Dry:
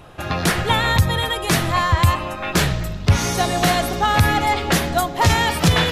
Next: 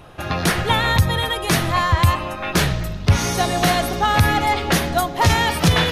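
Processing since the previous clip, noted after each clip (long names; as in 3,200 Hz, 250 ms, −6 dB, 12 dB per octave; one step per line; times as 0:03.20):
notch filter 7,500 Hz, Q 12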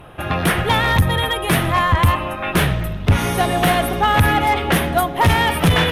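flat-topped bell 5,600 Hz −12 dB 1.1 octaves
asymmetric clip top −14 dBFS
level +2.5 dB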